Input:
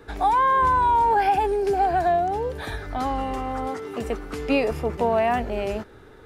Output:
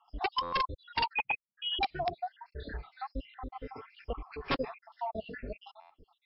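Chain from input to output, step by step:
time-frequency cells dropped at random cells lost 71%
low-shelf EQ 97 Hz +6 dB
notch filter 1,200 Hz, Q 20
0:03.78–0:04.84: hollow resonant body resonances 1,100/2,400 Hz, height 12 dB, ringing for 25 ms
flanger 1.2 Hz, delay 0.6 ms, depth 7.7 ms, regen −5%
wrap-around overflow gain 16.5 dB
0:01.13–0:01.79: voice inversion scrambler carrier 3,300 Hz
0:02.49–0:02.93: double-tracking delay 32 ms −3 dB
buffer that repeats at 0:00.42/0:05.80, samples 512
level −5.5 dB
MP3 32 kbit/s 12,000 Hz

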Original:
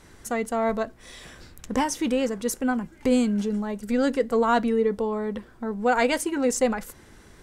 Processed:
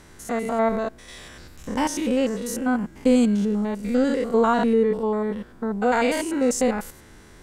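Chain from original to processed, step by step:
spectrum averaged block by block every 100 ms
level +4 dB

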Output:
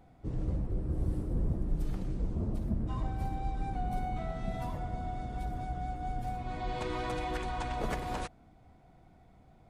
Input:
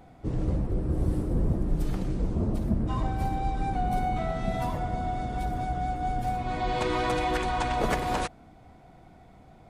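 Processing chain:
low-shelf EQ 150 Hz +5 dB
level −9 dB

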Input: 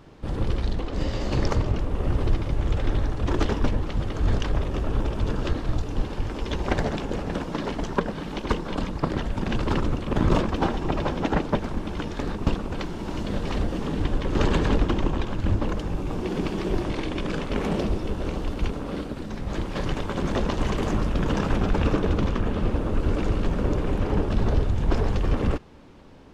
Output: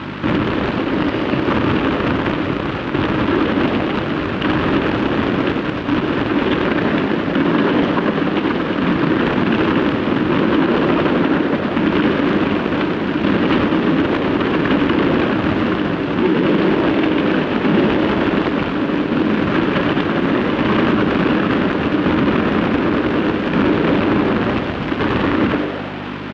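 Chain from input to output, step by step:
parametric band 790 Hz −8.5 dB 0.51 octaves
mains-hum notches 50/100/150/200/250/300/350/400/450 Hz
downward compressor 4 to 1, threshold −24 dBFS, peak gain reduction 7.5 dB
shaped tremolo saw down 0.68 Hz, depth 60%
mains hum 50 Hz, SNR 11 dB
in parallel at −6 dB: decimation without filtering 35×
on the sum: background noise pink −46 dBFS
log-companded quantiser 4 bits
loudspeaker in its box 230–2,800 Hz, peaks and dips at 300 Hz +4 dB, 460 Hz −9 dB, 710 Hz −7 dB, 2,100 Hz −4 dB
on a send: echo with shifted repeats 95 ms, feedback 62%, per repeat +96 Hz, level −10 dB
on the sum: boost into a limiter +24.5 dB
level −5 dB

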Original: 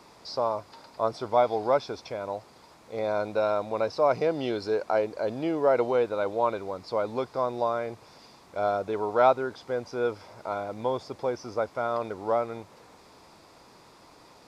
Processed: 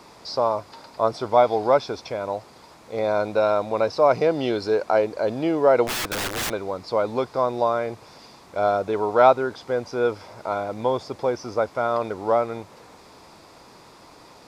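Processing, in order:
0:05.87–0:06.51: wrap-around overflow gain 27.5 dB
level +5.5 dB

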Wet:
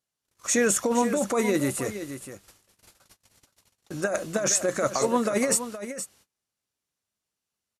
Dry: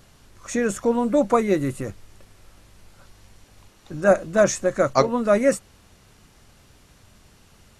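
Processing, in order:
noise gate −45 dBFS, range −36 dB
high-pass filter 260 Hz 6 dB per octave
high-shelf EQ 4,300 Hz +10.5 dB
compressor whose output falls as the input rises −22 dBFS, ratio −1
on a send: single-tap delay 469 ms −11 dB
on the sum: level −1 dB

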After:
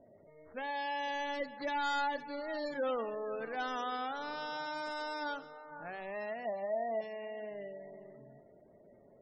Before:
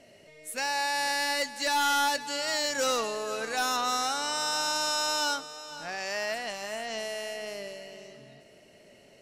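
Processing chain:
running median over 15 samples
0:06.45–0:07.01: graphic EQ with 15 bands 630 Hz +10 dB, 2,500 Hz +3 dB, 10,000 Hz +10 dB
low-pass that shuts in the quiet parts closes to 1,300 Hz, open at −27.5 dBFS
four-comb reverb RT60 0.62 s, combs from 27 ms, DRR 17.5 dB
gate on every frequency bin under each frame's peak −25 dB strong
dynamic equaliser 1,100 Hz, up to −5 dB, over −42 dBFS, Q 1
level −3.5 dB

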